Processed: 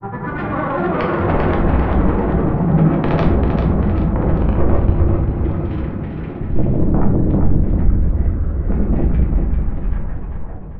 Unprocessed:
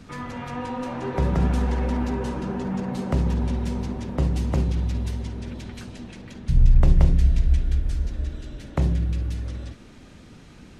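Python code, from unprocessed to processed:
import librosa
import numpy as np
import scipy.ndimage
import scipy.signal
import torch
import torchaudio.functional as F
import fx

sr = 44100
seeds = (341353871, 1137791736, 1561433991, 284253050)

y = fx.tape_stop_end(x, sr, length_s=2.23)
y = scipy.signal.sosfilt(scipy.signal.butter(4, 1600.0, 'lowpass', fs=sr, output='sos'), y)
y = fx.env_lowpass_down(y, sr, base_hz=900.0, full_db=-11.5)
y = scipy.signal.sosfilt(scipy.signal.butter(2, 41.0, 'highpass', fs=sr, output='sos'), y)
y = fx.granulator(y, sr, seeds[0], grain_ms=100.0, per_s=20.0, spray_ms=100.0, spread_st=7)
y = fx.fold_sine(y, sr, drive_db=14, ceiling_db=-8.5)
y = fx.granulator(y, sr, seeds[1], grain_ms=100.0, per_s=20.0, spray_ms=100.0, spread_st=0)
y = fx.echo_feedback(y, sr, ms=394, feedback_pct=44, wet_db=-6.0)
y = fx.room_shoebox(y, sr, seeds[2], volume_m3=87.0, walls='mixed', distance_m=0.68)
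y = y * 10.0 ** (-6.0 / 20.0)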